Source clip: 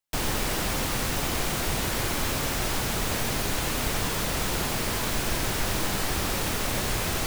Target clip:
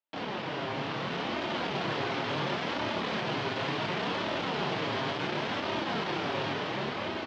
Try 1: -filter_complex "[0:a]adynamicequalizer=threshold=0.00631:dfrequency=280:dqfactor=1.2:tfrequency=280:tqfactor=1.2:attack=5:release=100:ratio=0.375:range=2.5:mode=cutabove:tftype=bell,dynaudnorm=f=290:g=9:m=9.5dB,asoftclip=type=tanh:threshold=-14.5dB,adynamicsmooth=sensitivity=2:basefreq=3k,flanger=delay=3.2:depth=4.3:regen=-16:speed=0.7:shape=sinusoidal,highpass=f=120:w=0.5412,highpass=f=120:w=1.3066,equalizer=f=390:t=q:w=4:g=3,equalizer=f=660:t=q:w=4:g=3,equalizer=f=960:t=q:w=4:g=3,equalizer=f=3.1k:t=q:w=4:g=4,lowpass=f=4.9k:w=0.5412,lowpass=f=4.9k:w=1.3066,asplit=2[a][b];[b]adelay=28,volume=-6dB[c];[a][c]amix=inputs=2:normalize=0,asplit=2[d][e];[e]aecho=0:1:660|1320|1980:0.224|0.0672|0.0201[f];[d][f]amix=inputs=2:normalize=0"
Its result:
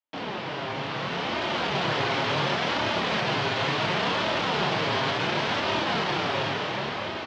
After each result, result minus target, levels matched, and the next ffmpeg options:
soft clip: distortion -9 dB; 250 Hz band -3.0 dB
-filter_complex "[0:a]adynamicequalizer=threshold=0.00631:dfrequency=280:dqfactor=1.2:tfrequency=280:tqfactor=1.2:attack=5:release=100:ratio=0.375:range=2.5:mode=cutabove:tftype=bell,dynaudnorm=f=290:g=9:m=9.5dB,asoftclip=type=tanh:threshold=-25dB,adynamicsmooth=sensitivity=2:basefreq=3k,flanger=delay=3.2:depth=4.3:regen=-16:speed=0.7:shape=sinusoidal,highpass=f=120:w=0.5412,highpass=f=120:w=1.3066,equalizer=f=390:t=q:w=4:g=3,equalizer=f=660:t=q:w=4:g=3,equalizer=f=960:t=q:w=4:g=3,equalizer=f=3.1k:t=q:w=4:g=4,lowpass=f=4.9k:w=0.5412,lowpass=f=4.9k:w=1.3066,asplit=2[a][b];[b]adelay=28,volume=-6dB[c];[a][c]amix=inputs=2:normalize=0,asplit=2[d][e];[e]aecho=0:1:660|1320|1980:0.224|0.0672|0.0201[f];[d][f]amix=inputs=2:normalize=0"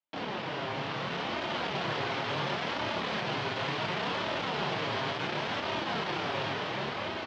250 Hz band -2.5 dB
-filter_complex "[0:a]dynaudnorm=f=290:g=9:m=9.5dB,asoftclip=type=tanh:threshold=-25dB,adynamicsmooth=sensitivity=2:basefreq=3k,flanger=delay=3.2:depth=4.3:regen=-16:speed=0.7:shape=sinusoidal,highpass=f=120:w=0.5412,highpass=f=120:w=1.3066,equalizer=f=390:t=q:w=4:g=3,equalizer=f=660:t=q:w=4:g=3,equalizer=f=960:t=q:w=4:g=3,equalizer=f=3.1k:t=q:w=4:g=4,lowpass=f=4.9k:w=0.5412,lowpass=f=4.9k:w=1.3066,asplit=2[a][b];[b]adelay=28,volume=-6dB[c];[a][c]amix=inputs=2:normalize=0,asplit=2[d][e];[e]aecho=0:1:660|1320|1980:0.224|0.0672|0.0201[f];[d][f]amix=inputs=2:normalize=0"

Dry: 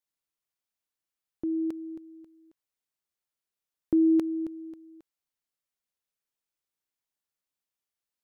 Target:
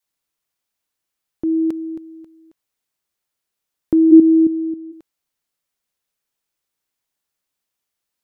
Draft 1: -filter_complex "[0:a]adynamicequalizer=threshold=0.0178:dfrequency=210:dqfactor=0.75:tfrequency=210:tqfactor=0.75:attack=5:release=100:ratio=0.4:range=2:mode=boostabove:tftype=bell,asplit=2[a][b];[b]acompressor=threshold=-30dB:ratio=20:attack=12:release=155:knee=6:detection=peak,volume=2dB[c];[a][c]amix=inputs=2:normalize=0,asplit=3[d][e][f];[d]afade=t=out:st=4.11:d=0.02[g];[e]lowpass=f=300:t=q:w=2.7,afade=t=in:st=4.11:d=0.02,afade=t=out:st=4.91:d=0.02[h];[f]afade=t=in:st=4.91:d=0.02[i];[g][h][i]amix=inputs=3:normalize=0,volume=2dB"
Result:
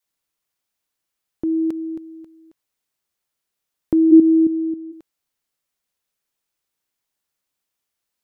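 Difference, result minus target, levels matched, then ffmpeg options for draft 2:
compressor: peak gain reduction +7 dB
-filter_complex "[0:a]adynamicequalizer=threshold=0.0178:dfrequency=210:dqfactor=0.75:tfrequency=210:tqfactor=0.75:attack=5:release=100:ratio=0.4:range=2:mode=boostabove:tftype=bell,asplit=2[a][b];[b]acompressor=threshold=-22.5dB:ratio=20:attack=12:release=155:knee=6:detection=peak,volume=2dB[c];[a][c]amix=inputs=2:normalize=0,asplit=3[d][e][f];[d]afade=t=out:st=4.11:d=0.02[g];[e]lowpass=f=300:t=q:w=2.7,afade=t=in:st=4.11:d=0.02,afade=t=out:st=4.91:d=0.02[h];[f]afade=t=in:st=4.91:d=0.02[i];[g][h][i]amix=inputs=3:normalize=0,volume=2dB"

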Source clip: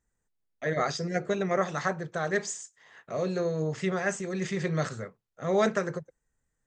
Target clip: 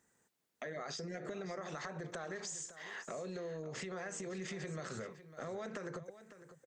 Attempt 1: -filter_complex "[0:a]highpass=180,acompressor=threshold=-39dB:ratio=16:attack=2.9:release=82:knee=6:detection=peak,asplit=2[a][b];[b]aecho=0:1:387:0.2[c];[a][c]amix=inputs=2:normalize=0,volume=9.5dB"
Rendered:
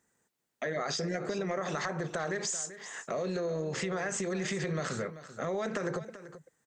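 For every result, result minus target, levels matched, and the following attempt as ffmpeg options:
compressor: peak gain reduction -10 dB; echo 0.166 s early
-filter_complex "[0:a]highpass=180,acompressor=threshold=-49.5dB:ratio=16:attack=2.9:release=82:knee=6:detection=peak,asplit=2[a][b];[b]aecho=0:1:387:0.2[c];[a][c]amix=inputs=2:normalize=0,volume=9.5dB"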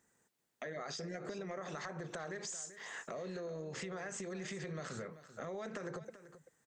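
echo 0.166 s early
-filter_complex "[0:a]highpass=180,acompressor=threshold=-49.5dB:ratio=16:attack=2.9:release=82:knee=6:detection=peak,asplit=2[a][b];[b]aecho=0:1:553:0.2[c];[a][c]amix=inputs=2:normalize=0,volume=9.5dB"

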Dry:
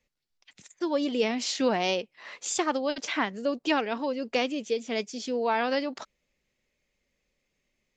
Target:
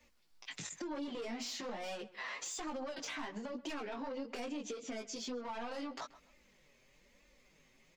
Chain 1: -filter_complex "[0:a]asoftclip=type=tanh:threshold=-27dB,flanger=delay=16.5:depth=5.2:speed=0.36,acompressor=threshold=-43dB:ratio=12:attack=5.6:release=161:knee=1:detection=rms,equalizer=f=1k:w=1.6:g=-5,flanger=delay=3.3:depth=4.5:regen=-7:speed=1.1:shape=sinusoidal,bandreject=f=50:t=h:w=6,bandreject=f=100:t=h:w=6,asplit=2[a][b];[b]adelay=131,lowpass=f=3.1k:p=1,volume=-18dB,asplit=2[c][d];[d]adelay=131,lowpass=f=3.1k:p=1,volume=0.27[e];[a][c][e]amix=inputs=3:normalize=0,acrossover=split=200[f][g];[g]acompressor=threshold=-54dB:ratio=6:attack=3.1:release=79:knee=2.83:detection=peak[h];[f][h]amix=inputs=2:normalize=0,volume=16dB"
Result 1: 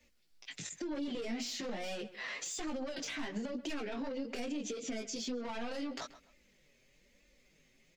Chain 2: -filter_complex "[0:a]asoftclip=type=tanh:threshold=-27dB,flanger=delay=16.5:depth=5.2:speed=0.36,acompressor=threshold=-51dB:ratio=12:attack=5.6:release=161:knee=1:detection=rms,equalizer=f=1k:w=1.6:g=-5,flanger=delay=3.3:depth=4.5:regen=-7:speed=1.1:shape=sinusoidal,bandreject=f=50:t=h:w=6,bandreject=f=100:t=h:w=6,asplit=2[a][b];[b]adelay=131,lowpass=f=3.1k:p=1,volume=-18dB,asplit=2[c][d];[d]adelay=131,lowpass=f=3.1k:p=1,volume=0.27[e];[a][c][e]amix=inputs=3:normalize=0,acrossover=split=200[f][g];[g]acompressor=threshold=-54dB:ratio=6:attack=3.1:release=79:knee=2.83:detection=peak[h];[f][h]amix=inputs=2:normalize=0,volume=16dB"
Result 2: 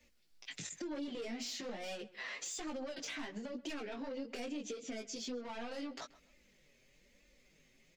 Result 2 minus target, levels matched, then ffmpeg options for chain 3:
1000 Hz band -4.5 dB
-filter_complex "[0:a]asoftclip=type=tanh:threshold=-27dB,flanger=delay=16.5:depth=5.2:speed=0.36,acompressor=threshold=-51dB:ratio=12:attack=5.6:release=161:knee=1:detection=rms,equalizer=f=1k:w=1.6:g=4,flanger=delay=3.3:depth=4.5:regen=-7:speed=1.1:shape=sinusoidal,bandreject=f=50:t=h:w=6,bandreject=f=100:t=h:w=6,asplit=2[a][b];[b]adelay=131,lowpass=f=3.1k:p=1,volume=-18dB,asplit=2[c][d];[d]adelay=131,lowpass=f=3.1k:p=1,volume=0.27[e];[a][c][e]amix=inputs=3:normalize=0,acrossover=split=200[f][g];[g]acompressor=threshold=-54dB:ratio=6:attack=3.1:release=79:knee=2.83:detection=peak[h];[f][h]amix=inputs=2:normalize=0,volume=16dB"

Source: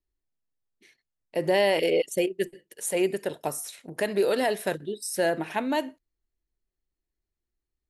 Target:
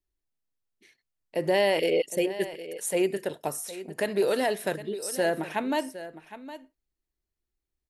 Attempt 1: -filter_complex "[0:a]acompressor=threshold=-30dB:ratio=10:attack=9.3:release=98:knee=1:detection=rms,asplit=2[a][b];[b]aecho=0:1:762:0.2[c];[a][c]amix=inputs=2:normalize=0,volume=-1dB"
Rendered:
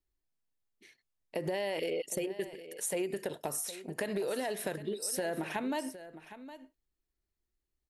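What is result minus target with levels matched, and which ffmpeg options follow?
compressor: peak gain reduction +12 dB
-filter_complex "[0:a]asplit=2[a][b];[b]aecho=0:1:762:0.2[c];[a][c]amix=inputs=2:normalize=0,volume=-1dB"

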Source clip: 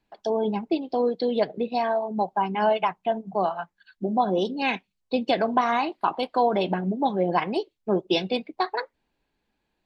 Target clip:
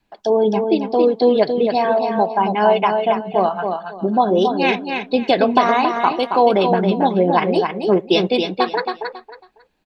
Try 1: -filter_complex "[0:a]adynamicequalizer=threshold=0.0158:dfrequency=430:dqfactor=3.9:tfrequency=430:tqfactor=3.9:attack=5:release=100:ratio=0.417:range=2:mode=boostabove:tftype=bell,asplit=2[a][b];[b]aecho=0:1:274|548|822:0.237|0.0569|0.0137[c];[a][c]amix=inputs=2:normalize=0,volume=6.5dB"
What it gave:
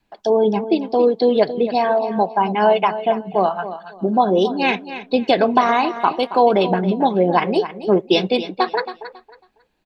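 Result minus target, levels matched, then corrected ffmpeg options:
echo-to-direct -7 dB
-filter_complex "[0:a]adynamicequalizer=threshold=0.0158:dfrequency=430:dqfactor=3.9:tfrequency=430:tqfactor=3.9:attack=5:release=100:ratio=0.417:range=2:mode=boostabove:tftype=bell,asplit=2[a][b];[b]aecho=0:1:274|548|822:0.531|0.127|0.0306[c];[a][c]amix=inputs=2:normalize=0,volume=6.5dB"

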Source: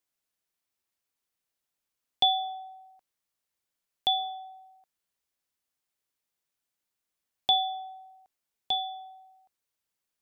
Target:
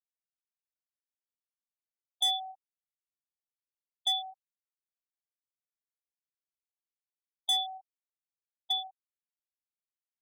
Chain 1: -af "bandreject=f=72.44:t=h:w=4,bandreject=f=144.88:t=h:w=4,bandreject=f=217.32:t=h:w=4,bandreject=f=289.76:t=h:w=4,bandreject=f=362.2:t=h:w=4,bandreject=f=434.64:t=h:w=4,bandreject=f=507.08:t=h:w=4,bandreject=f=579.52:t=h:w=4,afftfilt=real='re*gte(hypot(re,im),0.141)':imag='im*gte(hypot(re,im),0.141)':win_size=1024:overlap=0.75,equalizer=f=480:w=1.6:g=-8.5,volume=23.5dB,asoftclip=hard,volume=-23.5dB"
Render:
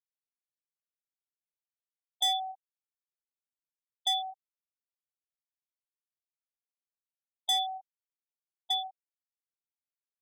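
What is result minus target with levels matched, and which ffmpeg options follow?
500 Hz band +4.0 dB
-af "bandreject=f=72.44:t=h:w=4,bandreject=f=144.88:t=h:w=4,bandreject=f=217.32:t=h:w=4,bandreject=f=289.76:t=h:w=4,bandreject=f=362.2:t=h:w=4,bandreject=f=434.64:t=h:w=4,bandreject=f=507.08:t=h:w=4,bandreject=f=579.52:t=h:w=4,afftfilt=real='re*gte(hypot(re,im),0.141)':imag='im*gte(hypot(re,im),0.141)':win_size=1024:overlap=0.75,equalizer=f=480:w=1.6:g=-20,volume=23.5dB,asoftclip=hard,volume=-23.5dB"

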